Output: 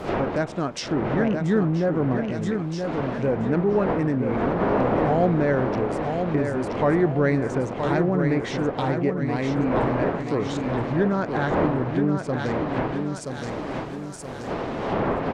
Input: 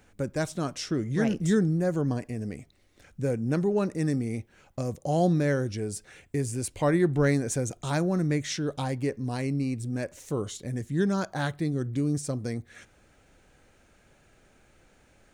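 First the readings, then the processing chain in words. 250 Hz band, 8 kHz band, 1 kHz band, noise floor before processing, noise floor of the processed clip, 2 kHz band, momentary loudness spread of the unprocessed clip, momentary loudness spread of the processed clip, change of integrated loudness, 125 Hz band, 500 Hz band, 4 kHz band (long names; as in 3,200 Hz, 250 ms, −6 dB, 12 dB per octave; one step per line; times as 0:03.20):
+5.0 dB, can't be measured, +10.5 dB, −61 dBFS, −34 dBFS, +6.5 dB, 10 LU, 8 LU, +4.5 dB, +3.0 dB, +7.0 dB, +2.0 dB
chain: adaptive Wiener filter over 9 samples
wind on the microphone 580 Hz −34 dBFS
de-essing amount 55%
high-shelf EQ 4,000 Hz +7.5 dB
in parallel at +1 dB: brickwall limiter −19.5 dBFS, peak gain reduction 8 dB
on the sum: bit-depth reduction 10 bits, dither triangular
low-shelf EQ 130 Hz −10 dB
on a send: repeating echo 975 ms, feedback 47%, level −6 dB
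on the sum: treble cut that deepens with the level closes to 2,000 Hz, closed at −19.5 dBFS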